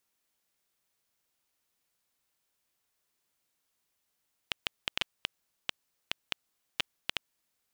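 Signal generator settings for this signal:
Geiger counter clicks 5.1 per second −10.5 dBFS 2.78 s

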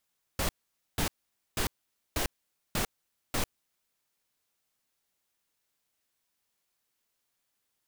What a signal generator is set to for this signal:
noise bursts pink, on 0.10 s, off 0.49 s, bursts 6, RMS −29 dBFS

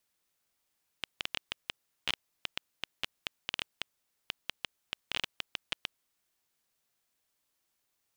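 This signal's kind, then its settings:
Geiger counter clicks 8.3 per second −14 dBFS 4.86 s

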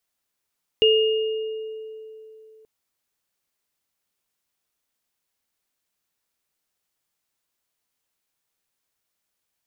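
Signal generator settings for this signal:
inharmonic partials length 1.83 s, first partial 438 Hz, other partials 2,840 Hz, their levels −2 dB, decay 3.14 s, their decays 1.47 s, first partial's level −14 dB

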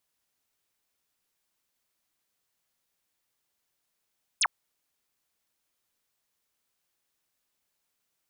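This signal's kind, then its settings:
single falling chirp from 11,000 Hz, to 750 Hz, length 0.05 s sine, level −21 dB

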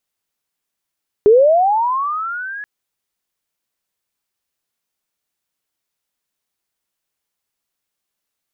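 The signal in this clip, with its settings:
glide linear 400 Hz → 1,700 Hz −5 dBFS → −26 dBFS 1.38 s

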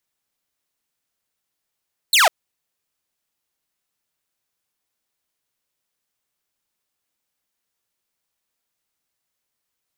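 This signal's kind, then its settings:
single falling chirp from 4,400 Hz, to 590 Hz, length 0.15 s saw, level −8.5 dB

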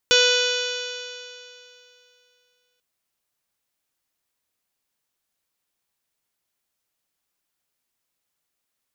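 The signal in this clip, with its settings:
stiff-string partials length 2.69 s, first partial 493 Hz, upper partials −16/−2.5/−15/−4/−1/−0.5/−7.5/−7/−17.5/−5/−12.5/−8.5/−17 dB, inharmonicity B 0.00041, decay 2.72 s, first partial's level −18.5 dB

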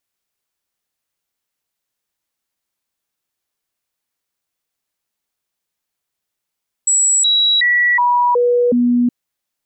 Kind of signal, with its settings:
stepped sweep 7,770 Hz down, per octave 1, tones 6, 0.37 s, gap 0.00 s −10.5 dBFS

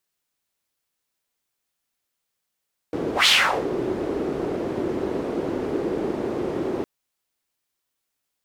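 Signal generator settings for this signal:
pass-by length 3.91 s, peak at 0:00.34, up 0.14 s, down 0.41 s, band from 370 Hz, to 3,500 Hz, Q 2.9, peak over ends 11 dB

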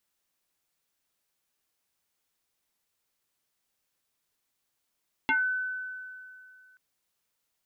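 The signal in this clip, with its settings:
two-operator FM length 1.48 s, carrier 1,510 Hz, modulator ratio 0.41, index 2.5, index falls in 0.20 s exponential, decay 2.48 s, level −21 dB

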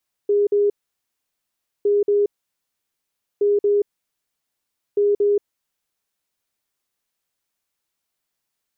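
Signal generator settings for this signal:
beeps in groups sine 409 Hz, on 0.18 s, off 0.05 s, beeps 2, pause 1.15 s, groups 4, −14 dBFS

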